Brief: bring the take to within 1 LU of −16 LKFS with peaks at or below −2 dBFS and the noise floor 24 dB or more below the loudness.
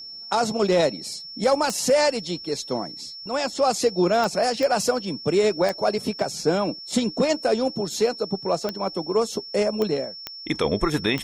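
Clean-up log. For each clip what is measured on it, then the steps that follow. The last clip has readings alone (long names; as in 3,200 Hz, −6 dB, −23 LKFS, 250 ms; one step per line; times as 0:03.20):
number of clicks 8; interfering tone 5,400 Hz; level of the tone −36 dBFS; integrated loudness −23.5 LKFS; sample peak −9.0 dBFS; target loudness −16.0 LKFS
→ click removal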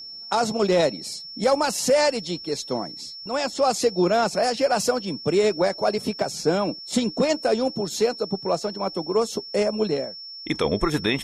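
number of clicks 0; interfering tone 5,400 Hz; level of the tone −36 dBFS
→ notch filter 5,400 Hz, Q 30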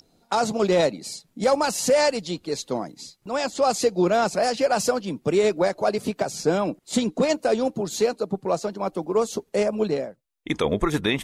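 interfering tone none found; integrated loudness −24.0 LKFS; sample peak −10.5 dBFS; target loudness −16.0 LKFS
→ level +8 dB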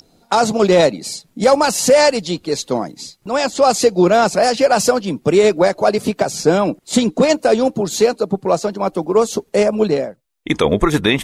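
integrated loudness −16.0 LKFS; sample peak −2.5 dBFS; background noise floor −58 dBFS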